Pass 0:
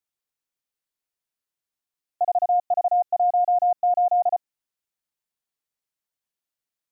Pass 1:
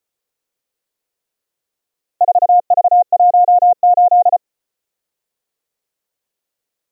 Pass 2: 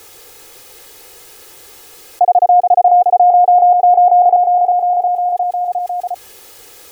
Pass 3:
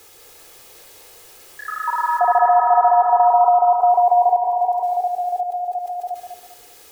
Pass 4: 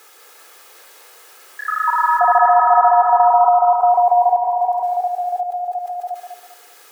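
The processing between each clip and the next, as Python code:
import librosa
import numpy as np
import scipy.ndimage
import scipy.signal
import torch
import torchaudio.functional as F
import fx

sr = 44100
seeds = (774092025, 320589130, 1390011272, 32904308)

y1 = fx.peak_eq(x, sr, hz=480.0, db=9.0, octaves=0.84)
y1 = y1 * librosa.db_to_amplitude(7.0)
y2 = y1 + 0.59 * np.pad(y1, (int(2.4 * sr / 1000.0), 0))[:len(y1)]
y2 = fx.echo_feedback(y2, sr, ms=356, feedback_pct=46, wet_db=-11.0)
y2 = fx.env_flatten(y2, sr, amount_pct=70)
y3 = fx.echo_feedback(y2, sr, ms=198, feedback_pct=30, wet_db=-8.0)
y3 = fx.echo_pitch(y3, sr, ms=221, semitones=5, count=3, db_per_echo=-6.0)
y3 = y3 * librosa.db_to_amplitude(-7.0)
y4 = scipy.signal.sosfilt(scipy.signal.butter(2, 360.0, 'highpass', fs=sr, output='sos'), y3)
y4 = fx.peak_eq(y4, sr, hz=1400.0, db=8.5, octaves=1.1)
y4 = y4 * librosa.db_to_amplitude(-1.0)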